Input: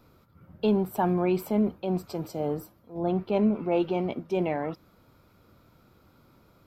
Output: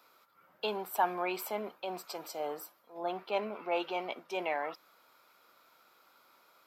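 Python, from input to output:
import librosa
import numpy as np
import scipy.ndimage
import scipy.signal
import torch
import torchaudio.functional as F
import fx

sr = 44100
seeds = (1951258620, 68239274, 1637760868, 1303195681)

y = scipy.signal.sosfilt(scipy.signal.butter(2, 860.0, 'highpass', fs=sr, output='sos'), x)
y = y * 10.0 ** (2.5 / 20.0)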